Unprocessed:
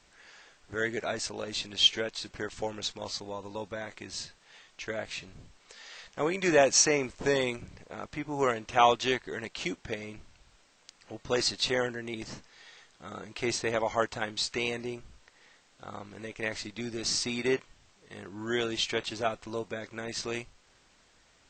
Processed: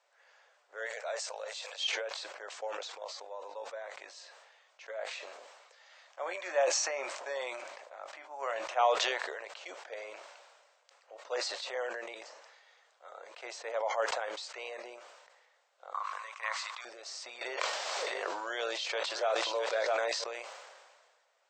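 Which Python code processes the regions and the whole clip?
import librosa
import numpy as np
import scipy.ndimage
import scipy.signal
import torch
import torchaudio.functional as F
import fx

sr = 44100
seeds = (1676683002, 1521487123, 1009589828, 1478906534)

y = fx.chain(x, sr, fx.brickwall_highpass(low_hz=430.0),
    fx.high_shelf(hz=5500.0, db=11.0), at=(0.86, 1.84))
y = fx.chain(y, sr, fx.peak_eq(hz=460.0, db=-12.0, octaves=0.23),
    fx.doubler(ms=22.0, db=-13.5), at=(5.85, 8.74))
y = fx.chain(y, sr, fx.highpass_res(hz=1100.0, q=9.8),
    fx.high_shelf(hz=2300.0, db=8.0), at=(15.94, 16.85))
y = fx.chain(y, sr, fx.peak_eq(hz=4600.0, db=6.0, octaves=0.9),
    fx.echo_single(ms=658, db=-14.0),
    fx.env_flatten(amount_pct=100), at=(17.41, 20.24))
y = scipy.signal.sosfilt(scipy.signal.ellip(4, 1.0, 80, 540.0, 'highpass', fs=sr, output='sos'), y)
y = fx.tilt_shelf(y, sr, db=7.0, hz=1200.0)
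y = fx.sustainer(y, sr, db_per_s=35.0)
y = y * librosa.db_to_amplitude(-7.0)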